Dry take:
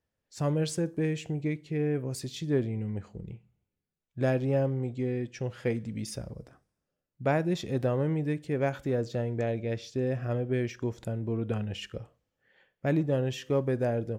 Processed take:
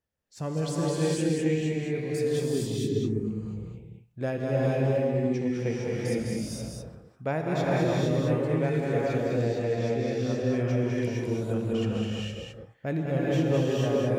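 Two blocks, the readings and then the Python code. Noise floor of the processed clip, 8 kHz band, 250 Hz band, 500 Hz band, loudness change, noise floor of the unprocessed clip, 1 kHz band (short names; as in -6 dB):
-54 dBFS, +4.0 dB, +3.5 dB, +3.5 dB, +3.0 dB, under -85 dBFS, +3.5 dB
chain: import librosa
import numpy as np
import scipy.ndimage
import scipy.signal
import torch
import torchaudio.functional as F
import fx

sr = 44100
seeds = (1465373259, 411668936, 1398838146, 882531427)

p1 = fx.spec_box(x, sr, start_s=2.47, length_s=0.57, low_hz=480.0, high_hz=5200.0, gain_db=-16)
p2 = p1 + fx.echo_single(p1, sr, ms=205, db=-4.5, dry=0)
p3 = fx.rev_gated(p2, sr, seeds[0], gate_ms=490, shape='rising', drr_db=-4.5)
y = p3 * librosa.db_to_amplitude(-3.5)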